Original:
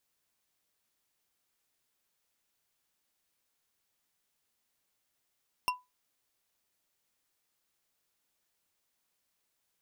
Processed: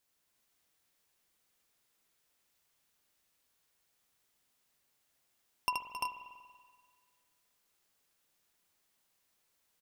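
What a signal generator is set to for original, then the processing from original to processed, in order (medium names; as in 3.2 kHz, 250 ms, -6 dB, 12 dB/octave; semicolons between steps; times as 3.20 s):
glass hit, lowest mode 997 Hz, decay 0.21 s, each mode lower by 3 dB, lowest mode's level -23.5 dB
multi-tap echo 76/269/282/344/373 ms -4.5/-12/-20/-3.5/-11.5 dB; spring tank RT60 1.8 s, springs 47 ms, chirp 65 ms, DRR 9 dB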